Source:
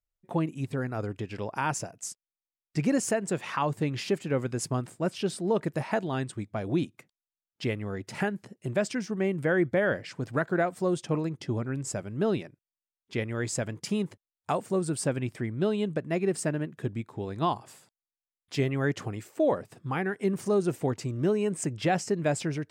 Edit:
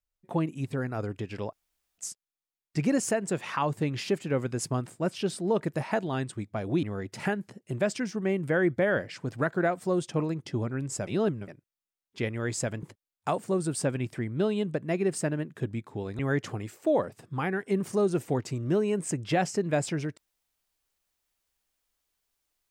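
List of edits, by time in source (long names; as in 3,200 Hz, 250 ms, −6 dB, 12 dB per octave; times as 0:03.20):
0:01.53–0:01.98: fill with room tone
0:06.83–0:07.78: remove
0:12.02–0:12.43: reverse
0:13.78–0:14.05: remove
0:17.41–0:18.72: remove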